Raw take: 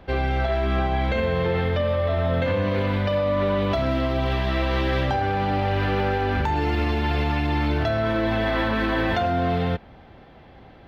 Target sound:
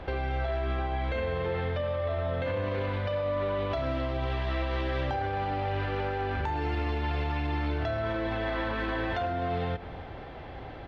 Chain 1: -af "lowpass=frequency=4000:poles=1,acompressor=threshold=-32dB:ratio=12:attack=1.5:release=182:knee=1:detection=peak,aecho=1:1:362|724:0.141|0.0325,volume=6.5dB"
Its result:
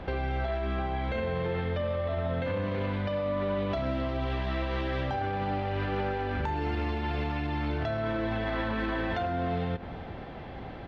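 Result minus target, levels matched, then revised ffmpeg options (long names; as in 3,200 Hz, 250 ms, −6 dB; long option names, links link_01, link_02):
echo 104 ms late; 250 Hz band +3.0 dB
-af "lowpass=frequency=4000:poles=1,equalizer=frequency=200:width=2.4:gain=-9,acompressor=threshold=-32dB:ratio=12:attack=1.5:release=182:knee=1:detection=peak,aecho=1:1:258|516:0.141|0.0325,volume=6.5dB"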